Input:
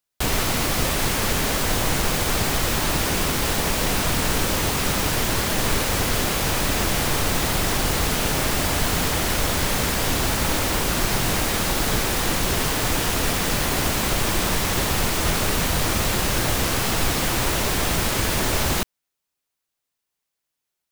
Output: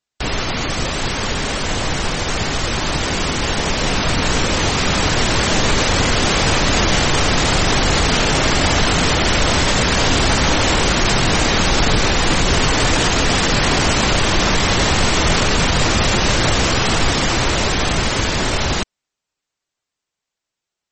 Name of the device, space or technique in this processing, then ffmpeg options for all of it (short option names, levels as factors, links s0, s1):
low-bitrate web radio: -filter_complex "[0:a]asplit=3[s0][s1][s2];[s0]afade=t=out:st=11.55:d=0.02[s3];[s1]lowshelf=f=81:g=3.5,afade=t=in:st=11.55:d=0.02,afade=t=out:st=12.85:d=0.02[s4];[s2]afade=t=in:st=12.85:d=0.02[s5];[s3][s4][s5]amix=inputs=3:normalize=0,dynaudnorm=f=740:g=13:m=5.62,alimiter=limit=0.447:level=0:latency=1:release=12,volume=1.26" -ar 48000 -c:a libmp3lame -b:a 32k